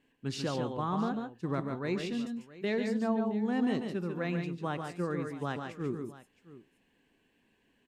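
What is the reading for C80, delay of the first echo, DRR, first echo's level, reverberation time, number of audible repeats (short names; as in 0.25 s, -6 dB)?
none, 0.1 s, none, -19.0 dB, none, 3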